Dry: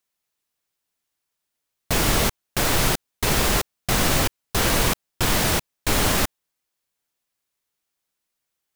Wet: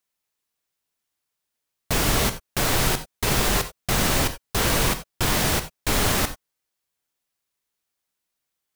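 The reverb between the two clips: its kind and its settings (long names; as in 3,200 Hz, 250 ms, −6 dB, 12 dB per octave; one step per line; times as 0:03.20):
reverb whose tail is shaped and stops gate 110 ms flat, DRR 9.5 dB
level −1.5 dB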